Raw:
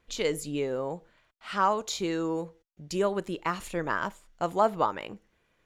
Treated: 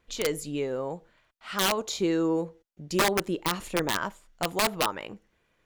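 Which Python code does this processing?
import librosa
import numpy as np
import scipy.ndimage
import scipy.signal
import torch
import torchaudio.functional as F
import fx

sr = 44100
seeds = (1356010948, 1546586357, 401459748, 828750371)

y = fx.peak_eq(x, sr, hz=320.0, db=5.0, octaves=2.3, at=(1.77, 3.96), fade=0.02)
y = (np.mod(10.0 ** (17.0 / 20.0) * y + 1.0, 2.0) - 1.0) / 10.0 ** (17.0 / 20.0)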